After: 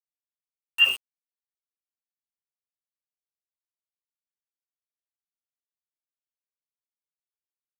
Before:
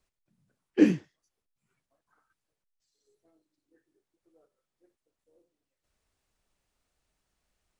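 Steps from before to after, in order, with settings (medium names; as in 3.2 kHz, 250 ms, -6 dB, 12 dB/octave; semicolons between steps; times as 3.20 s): pitch shift switched off and on -6.5 st, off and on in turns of 143 ms; frequency inversion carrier 3 kHz; small samples zeroed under -32 dBFS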